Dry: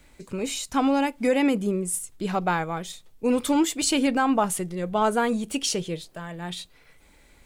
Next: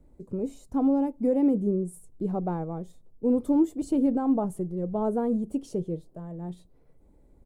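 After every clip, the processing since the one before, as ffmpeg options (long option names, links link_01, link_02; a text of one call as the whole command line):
ffmpeg -i in.wav -af "firequalizer=gain_entry='entry(360,0);entry(1500,-23);entry(2500,-30);entry(9800,-20)':delay=0.05:min_phase=1" out.wav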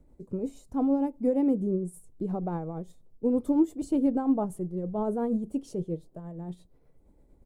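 ffmpeg -i in.wav -af "tremolo=f=8.6:d=0.41" out.wav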